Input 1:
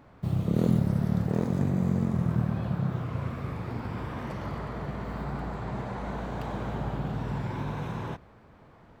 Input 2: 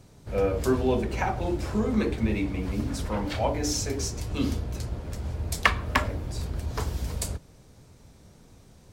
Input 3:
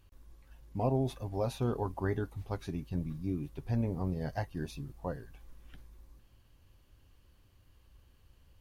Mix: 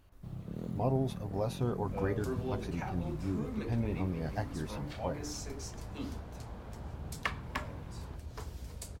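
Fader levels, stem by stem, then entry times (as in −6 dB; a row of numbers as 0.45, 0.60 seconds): −16.0, −13.5, −1.0 decibels; 0.00, 1.60, 0.00 seconds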